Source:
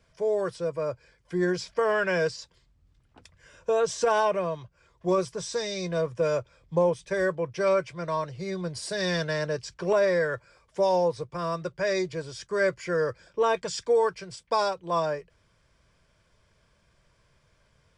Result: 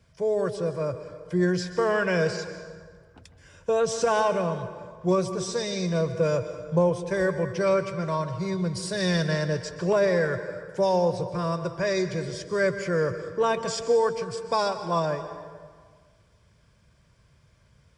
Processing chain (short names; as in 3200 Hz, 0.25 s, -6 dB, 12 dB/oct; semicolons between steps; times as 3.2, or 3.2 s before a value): HPF 51 Hz; tone controls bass +8 dB, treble +2 dB; plate-style reverb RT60 1.7 s, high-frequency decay 0.65×, pre-delay 0.115 s, DRR 9.5 dB